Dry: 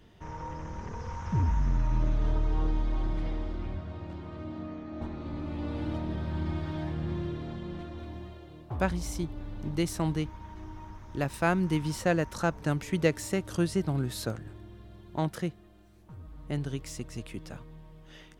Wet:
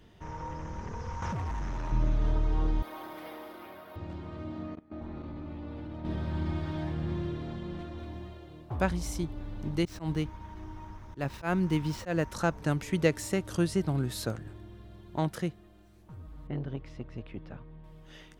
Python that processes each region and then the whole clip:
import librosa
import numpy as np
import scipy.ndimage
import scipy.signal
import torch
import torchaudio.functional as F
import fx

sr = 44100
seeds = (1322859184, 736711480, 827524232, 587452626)

y = fx.chain(x, sr, fx.low_shelf(hz=97.0, db=-9.0),
    fx.overload_stage(gain_db=32.0),
    fx.env_flatten(amount_pct=100), at=(1.22, 1.92))
y = fx.chain(y, sr, fx.highpass(hz=470.0, slope=12),
    fx.peak_eq(hz=1200.0, db=2.5, octaves=1.7),
    fx.resample_bad(factor=3, down='none', up='hold'), at=(2.82, 3.96))
y = fx.chain(y, sr, fx.peak_eq(hz=11000.0, db=-9.5, octaves=2.1),
    fx.level_steps(step_db=20), at=(4.75, 6.05))
y = fx.chain(y, sr, fx.median_filter(points=5),
    fx.auto_swell(attack_ms=120.0), at=(9.85, 12.3))
y = fx.chain(y, sr, fx.air_absorb(metres=340.0),
    fx.transformer_sat(knee_hz=270.0), at=(16.47, 17.84))